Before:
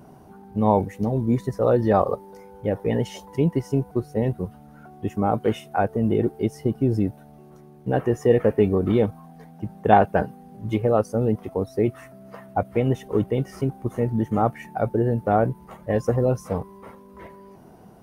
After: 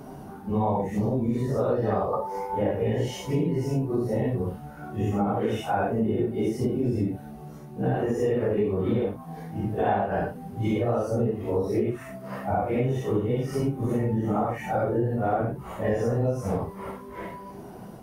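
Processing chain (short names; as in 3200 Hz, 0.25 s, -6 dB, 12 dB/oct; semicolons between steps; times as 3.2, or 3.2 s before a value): phase scrambler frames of 0.2 s; 2.13–2.71 bell 960 Hz +12.5 dB 0.88 oct; compressor 6:1, threshold -29 dBFS, peak gain reduction 17 dB; gain +6.5 dB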